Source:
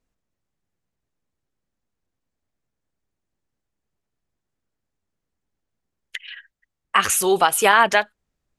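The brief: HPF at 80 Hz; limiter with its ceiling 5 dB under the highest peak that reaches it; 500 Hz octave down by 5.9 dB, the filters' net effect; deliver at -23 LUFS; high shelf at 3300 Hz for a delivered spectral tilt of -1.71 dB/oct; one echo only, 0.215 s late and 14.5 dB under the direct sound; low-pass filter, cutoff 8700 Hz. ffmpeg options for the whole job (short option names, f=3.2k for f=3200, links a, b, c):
-af "highpass=80,lowpass=8.7k,equalizer=f=500:t=o:g=-8.5,highshelf=f=3.3k:g=-5,alimiter=limit=-9.5dB:level=0:latency=1,aecho=1:1:215:0.188"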